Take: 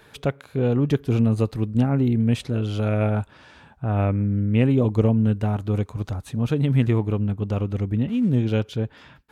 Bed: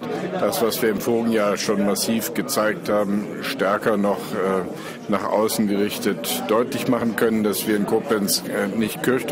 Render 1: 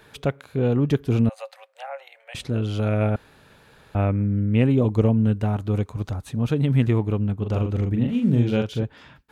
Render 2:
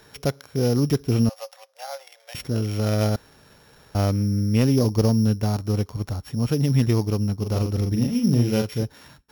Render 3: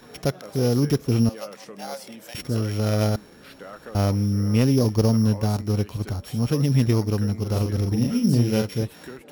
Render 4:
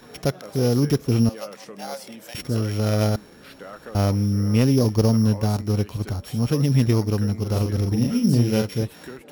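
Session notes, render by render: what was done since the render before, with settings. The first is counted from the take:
1.29–2.35 rippled Chebyshev high-pass 530 Hz, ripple 6 dB; 3.16–3.95 room tone; 7.38–8.83 doubler 42 ms -4.5 dB
sample sorter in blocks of 8 samples; hard clip -11 dBFS, distortion -26 dB
add bed -20.5 dB
gain +1 dB

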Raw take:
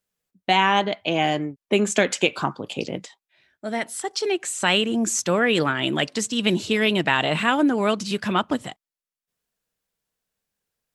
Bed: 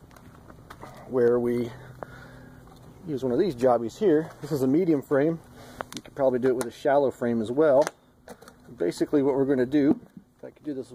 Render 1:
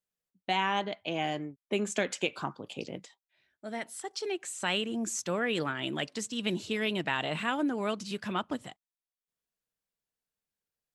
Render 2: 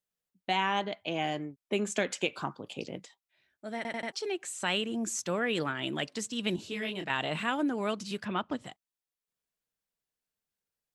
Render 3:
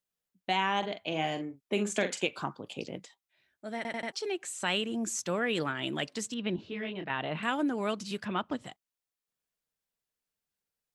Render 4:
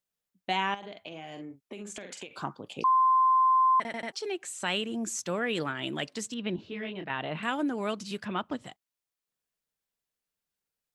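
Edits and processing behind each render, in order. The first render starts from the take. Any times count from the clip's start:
gain -10.5 dB
3.76 stutter in place 0.09 s, 4 plays; 6.56–7.1 detuned doubles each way 37 cents; 8.24–8.64 LPF 2900 Hz -> 7100 Hz
0.78–2.21 doubler 44 ms -9 dB; 6.34–7.43 air absorption 300 m
0.74–2.31 compressor 12:1, threshold -37 dBFS; 2.84–3.8 bleep 1040 Hz -19 dBFS

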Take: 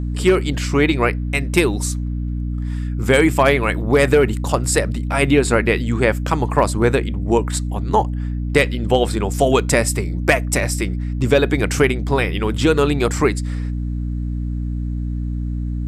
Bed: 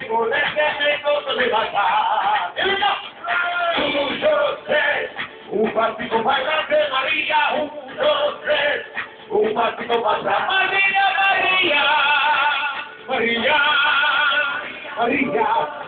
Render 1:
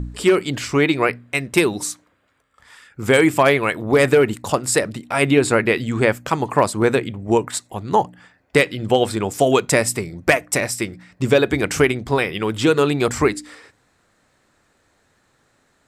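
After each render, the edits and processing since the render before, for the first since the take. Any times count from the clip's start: de-hum 60 Hz, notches 5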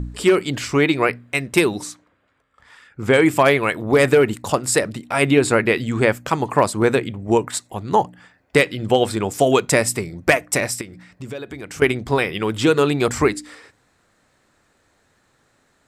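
1.81–3.26 LPF 3500 Hz 6 dB/oct; 10.81–11.82 compressor 2.5:1, threshold -36 dBFS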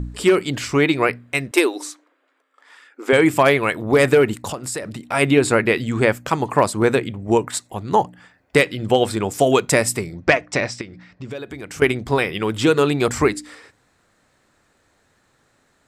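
1.51–3.13 brick-wall FIR high-pass 250 Hz; 4.5–5.07 compressor 3:1, threshold -26 dBFS; 10.16–11.31 LPF 5800 Hz 24 dB/oct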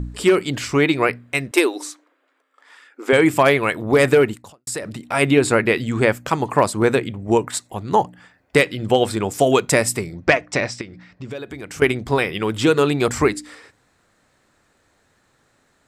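4.23–4.67 fade out quadratic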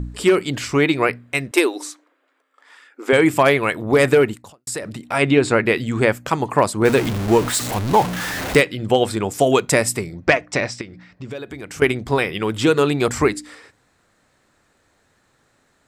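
5.18–5.66 LPF 6500 Hz; 6.85–8.6 zero-crossing step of -20 dBFS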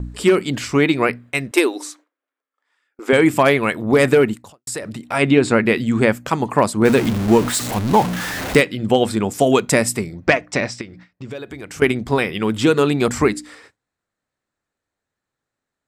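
dynamic EQ 220 Hz, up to +7 dB, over -35 dBFS, Q 2.7; gate with hold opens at -33 dBFS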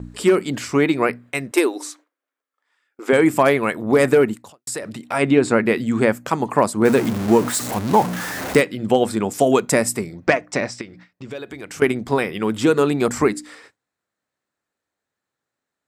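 HPF 170 Hz 6 dB/oct; dynamic EQ 3200 Hz, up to -6 dB, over -34 dBFS, Q 0.95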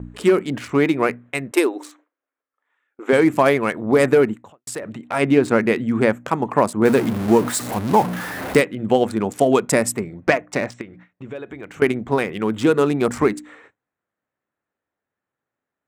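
Wiener smoothing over 9 samples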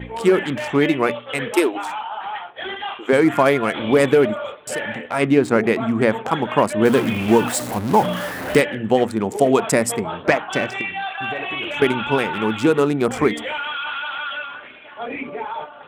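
add bed -10 dB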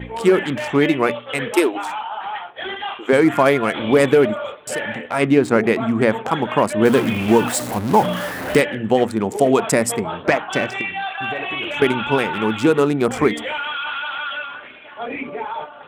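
gain +1 dB; limiter -3 dBFS, peak gain reduction 2.5 dB

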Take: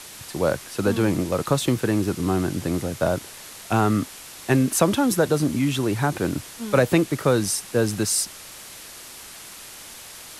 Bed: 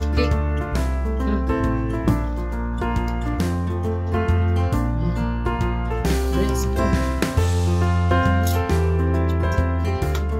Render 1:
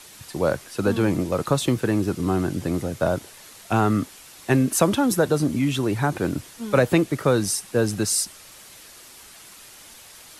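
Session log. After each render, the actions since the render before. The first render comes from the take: denoiser 6 dB, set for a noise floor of -41 dBFS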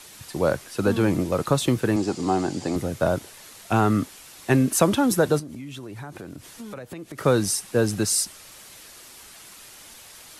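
1.96–2.76 speaker cabinet 150–9000 Hz, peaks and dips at 170 Hz -4 dB, 800 Hz +9 dB, 1400 Hz -3 dB, 4700 Hz +8 dB, 7100 Hz +7 dB; 5.39–7.18 compressor 8:1, threshold -34 dBFS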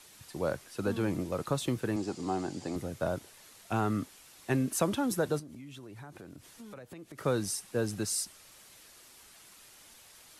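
gain -10 dB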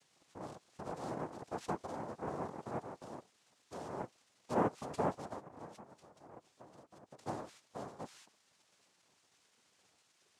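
vowel filter i; noise vocoder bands 2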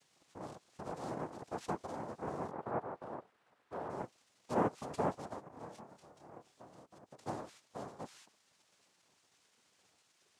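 2.51–3.9 EQ curve 270 Hz 0 dB, 440 Hz +4 dB, 1500 Hz +5 dB, 6600 Hz -17 dB, 12000 Hz -11 dB; 5.49–6.86 doubler 27 ms -5 dB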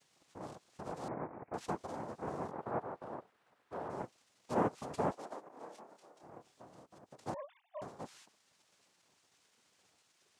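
1.08–1.54 elliptic low-pass 2300 Hz; 5.11–6.23 Chebyshev high-pass 350 Hz; 7.34–7.82 sine-wave speech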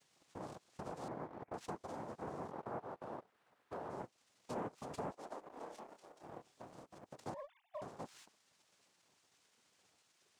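sample leveller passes 1; compressor 2.5:1, threshold -46 dBFS, peak gain reduction 14 dB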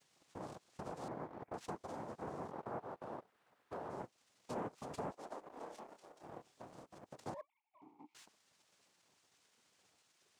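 7.41–8.15 vowel filter u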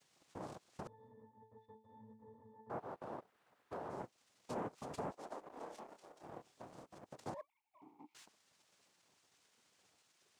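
0.87–2.7 octave resonator A, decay 0.35 s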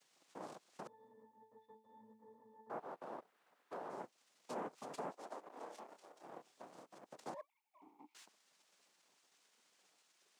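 HPF 160 Hz 24 dB/oct; low shelf 260 Hz -7.5 dB

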